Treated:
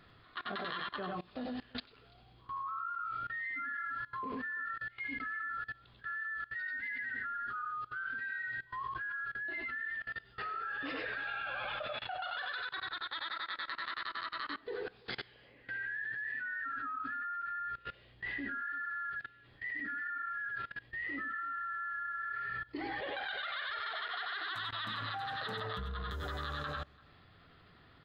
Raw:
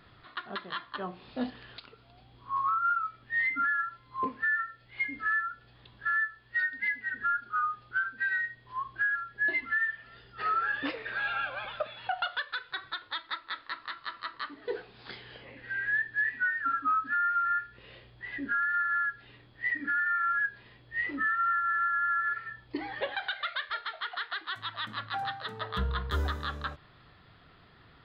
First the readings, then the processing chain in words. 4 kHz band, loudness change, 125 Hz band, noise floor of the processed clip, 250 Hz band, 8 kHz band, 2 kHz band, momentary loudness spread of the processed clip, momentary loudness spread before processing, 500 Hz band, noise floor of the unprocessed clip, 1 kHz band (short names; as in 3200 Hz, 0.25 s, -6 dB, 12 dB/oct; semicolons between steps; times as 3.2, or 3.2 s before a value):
-2.5 dB, -7.5 dB, -6.5 dB, -61 dBFS, -4.5 dB, n/a, -7.5 dB, 5 LU, 12 LU, -3.5 dB, -58 dBFS, -8.0 dB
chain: notch 940 Hz, Q 17; tapped delay 90/102/338 ms -6.5/-5.5/-17 dB; level quantiser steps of 22 dB; gain +5 dB